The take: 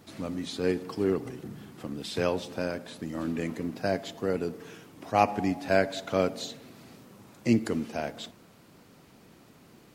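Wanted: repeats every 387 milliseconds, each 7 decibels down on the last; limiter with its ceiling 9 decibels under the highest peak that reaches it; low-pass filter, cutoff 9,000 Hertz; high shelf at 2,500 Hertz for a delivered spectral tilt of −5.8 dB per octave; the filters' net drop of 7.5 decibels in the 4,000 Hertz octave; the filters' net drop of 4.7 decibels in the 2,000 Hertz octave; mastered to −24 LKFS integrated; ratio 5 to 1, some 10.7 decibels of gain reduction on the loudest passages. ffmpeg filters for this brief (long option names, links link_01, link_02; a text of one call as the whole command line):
ffmpeg -i in.wav -af "lowpass=9000,equalizer=frequency=2000:width_type=o:gain=-3,highshelf=frequency=2500:gain=-6,equalizer=frequency=4000:width_type=o:gain=-3,acompressor=threshold=-30dB:ratio=5,alimiter=level_in=3.5dB:limit=-24dB:level=0:latency=1,volume=-3.5dB,aecho=1:1:387|774|1161|1548|1935:0.447|0.201|0.0905|0.0407|0.0183,volume=15.5dB" out.wav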